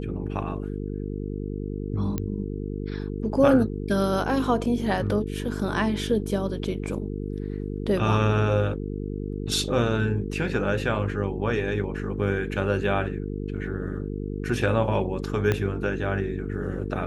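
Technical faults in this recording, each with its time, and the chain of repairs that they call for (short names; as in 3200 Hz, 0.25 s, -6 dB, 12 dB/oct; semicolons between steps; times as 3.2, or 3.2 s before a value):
buzz 50 Hz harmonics 9 -31 dBFS
2.18 pop -14 dBFS
15.52 pop -11 dBFS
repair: de-click; de-hum 50 Hz, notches 9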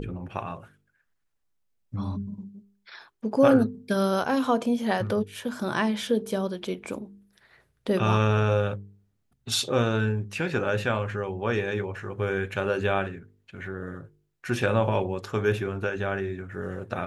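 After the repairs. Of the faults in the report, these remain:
15.52 pop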